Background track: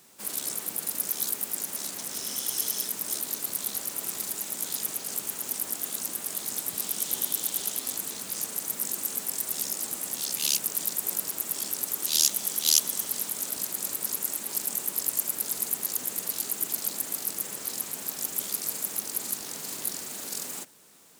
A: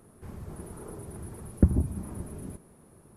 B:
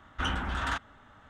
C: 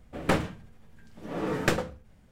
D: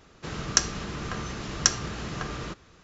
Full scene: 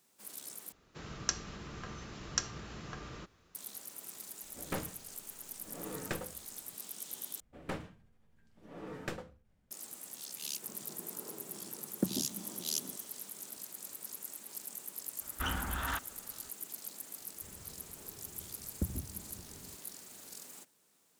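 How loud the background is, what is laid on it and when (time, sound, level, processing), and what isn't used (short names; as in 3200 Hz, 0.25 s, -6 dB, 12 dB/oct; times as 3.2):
background track -14.5 dB
0.72 replace with D -11.5 dB + added noise pink -69 dBFS
4.43 add C -13.5 dB
7.4 replace with C -15 dB
10.4 add A -6.5 dB + HPF 190 Hz 24 dB/oct
15.21 add B -5 dB
17.19 add A -15 dB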